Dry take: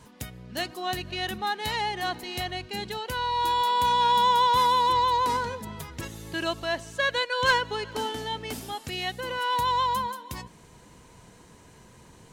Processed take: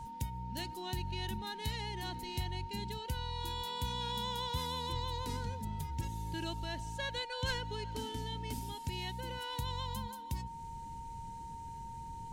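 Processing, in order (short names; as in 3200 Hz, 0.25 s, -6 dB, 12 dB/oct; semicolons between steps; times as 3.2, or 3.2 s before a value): passive tone stack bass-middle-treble 10-0-1; in parallel at +0.5 dB: compressor, threshold -60 dBFS, peak gain reduction 16.5 dB; on the sum: whine 920 Hz -54 dBFS; gain +10 dB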